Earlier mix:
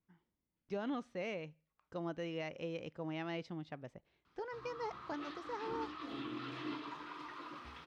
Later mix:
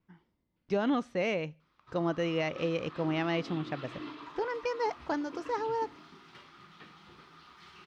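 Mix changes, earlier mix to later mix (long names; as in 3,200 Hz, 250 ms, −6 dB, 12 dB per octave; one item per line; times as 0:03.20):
speech +10.5 dB
background: entry −2.65 s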